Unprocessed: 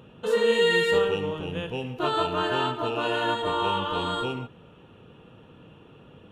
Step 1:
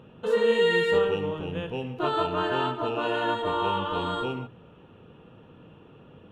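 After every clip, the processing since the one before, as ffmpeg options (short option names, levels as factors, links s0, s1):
-af "highshelf=f=3700:g=-9.5,bandreject=f=60:t=h:w=6,bandreject=f=120:t=h:w=6"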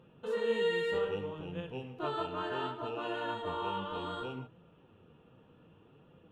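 -af "flanger=delay=5.7:depth=9.7:regen=63:speed=0.65:shape=sinusoidal,volume=0.531"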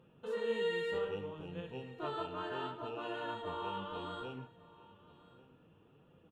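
-af "aecho=1:1:1139:0.0944,volume=0.631"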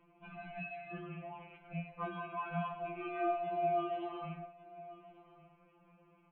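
-af "acompressor=threshold=0.0126:ratio=6,highpass=f=400:t=q:w=0.5412,highpass=f=400:t=q:w=1.307,lowpass=f=2700:t=q:w=0.5176,lowpass=f=2700:t=q:w=0.7071,lowpass=f=2700:t=q:w=1.932,afreqshift=-230,afftfilt=real='re*2.83*eq(mod(b,8),0)':imag='im*2.83*eq(mod(b,8),0)':win_size=2048:overlap=0.75,volume=2.66"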